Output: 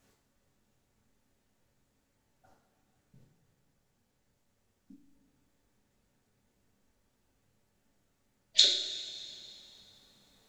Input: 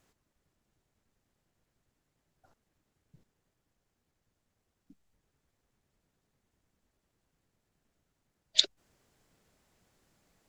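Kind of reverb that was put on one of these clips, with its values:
coupled-rooms reverb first 0.53 s, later 2.8 s, from −14 dB, DRR −3 dB
level −1 dB

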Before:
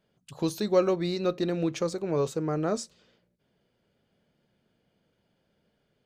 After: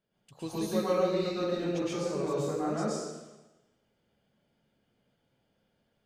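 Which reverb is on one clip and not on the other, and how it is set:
dense smooth reverb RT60 1.1 s, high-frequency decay 0.9×, pre-delay 100 ms, DRR −8.5 dB
level −10.5 dB

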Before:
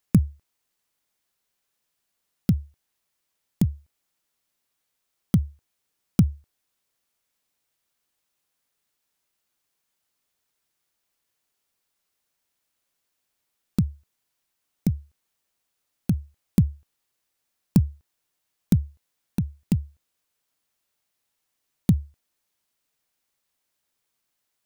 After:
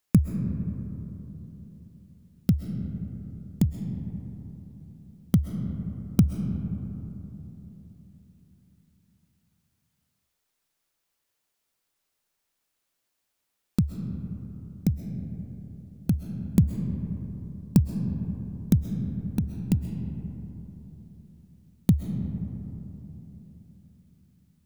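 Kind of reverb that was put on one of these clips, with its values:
comb and all-pass reverb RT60 3.8 s, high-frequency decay 0.3×, pre-delay 90 ms, DRR 6 dB
level −1 dB

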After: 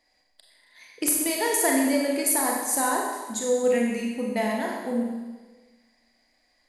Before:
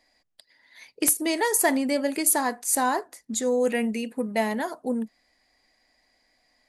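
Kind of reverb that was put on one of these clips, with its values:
four-comb reverb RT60 1.3 s, combs from 30 ms, DRR −1 dB
level −3.5 dB

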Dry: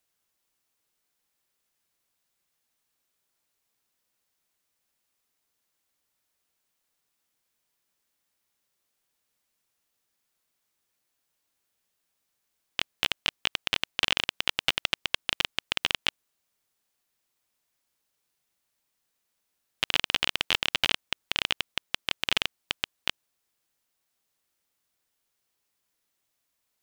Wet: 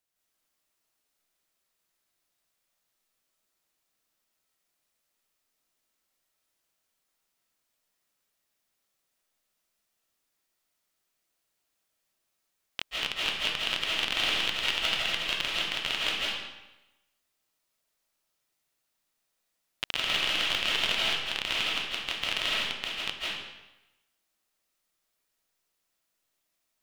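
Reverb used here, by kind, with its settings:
comb and all-pass reverb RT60 1 s, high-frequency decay 0.9×, pre-delay 120 ms, DRR −6 dB
level −6.5 dB

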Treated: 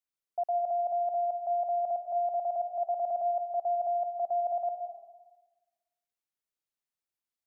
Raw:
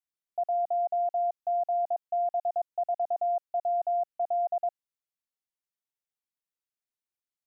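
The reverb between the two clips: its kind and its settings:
comb and all-pass reverb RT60 1.2 s, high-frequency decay 0.45×, pre-delay 115 ms, DRR 7.5 dB
level −1.5 dB

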